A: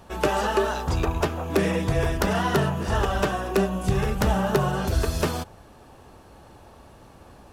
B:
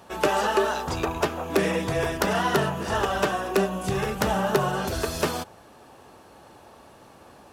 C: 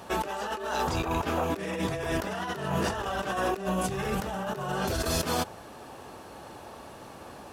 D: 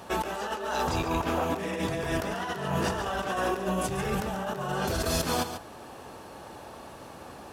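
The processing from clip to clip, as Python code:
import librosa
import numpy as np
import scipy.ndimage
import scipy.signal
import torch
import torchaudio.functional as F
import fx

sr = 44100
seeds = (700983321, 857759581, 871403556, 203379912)

y1 = fx.highpass(x, sr, hz=260.0, slope=6)
y1 = y1 * 10.0 ** (1.5 / 20.0)
y2 = fx.over_compress(y1, sr, threshold_db=-31.0, ratio=-1.0)
y3 = y2 + 10.0 ** (-9.5 / 20.0) * np.pad(y2, (int(141 * sr / 1000.0), 0))[:len(y2)]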